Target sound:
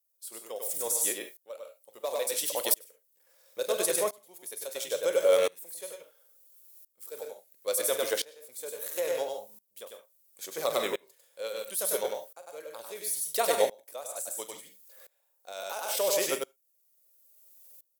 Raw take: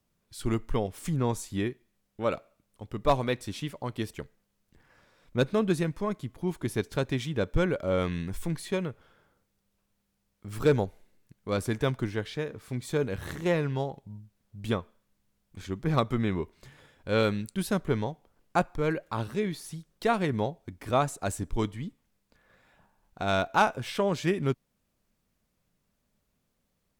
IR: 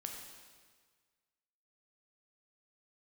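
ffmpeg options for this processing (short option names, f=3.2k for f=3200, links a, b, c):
-filter_complex "[0:a]highpass=f=530:t=q:w=5.2,aemphasis=mode=production:type=75kf,aecho=1:1:26|62:0.133|0.2,atempo=1.5,asplit=2[a][b];[1:a]atrim=start_sample=2205,atrim=end_sample=3528,adelay=99[c];[b][c]afir=irnorm=-1:irlink=0,volume=-1.5dB[d];[a][d]amix=inputs=2:normalize=0,crystalizer=i=4:c=0,alimiter=level_in=6.5dB:limit=-1dB:release=50:level=0:latency=1,aeval=exprs='val(0)*pow(10,-25*if(lt(mod(-0.73*n/s,1),2*abs(-0.73)/1000),1-mod(-0.73*n/s,1)/(2*abs(-0.73)/1000),(mod(-0.73*n/s,1)-2*abs(-0.73)/1000)/(1-2*abs(-0.73)/1000))/20)':c=same,volume=-9dB"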